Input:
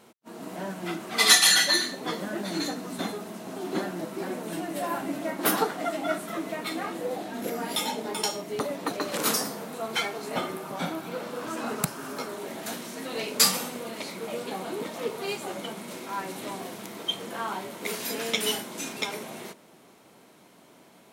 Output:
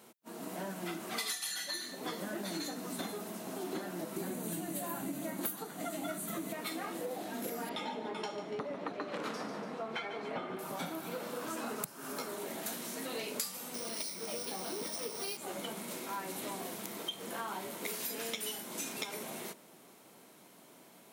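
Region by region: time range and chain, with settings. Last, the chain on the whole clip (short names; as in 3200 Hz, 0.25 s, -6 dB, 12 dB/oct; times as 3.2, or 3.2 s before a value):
4.16–6.53 tone controls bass +11 dB, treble +7 dB + notch 5300 Hz, Q 5.4
7.69–10.59 LPF 2500 Hz + feedback echo 0.144 s, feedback 51%, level -12 dB
13.74–15.37 synth low-pass 5600 Hz, resonance Q 13 + careless resampling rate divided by 3×, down filtered, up hold
whole clip: HPF 110 Hz; high shelf 8900 Hz +10.5 dB; compressor 12:1, threshold -31 dBFS; gain -4 dB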